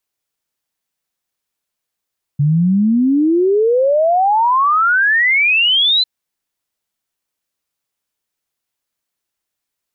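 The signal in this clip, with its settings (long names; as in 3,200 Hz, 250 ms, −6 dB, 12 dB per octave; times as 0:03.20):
exponential sine sweep 140 Hz → 4,100 Hz 3.65 s −10 dBFS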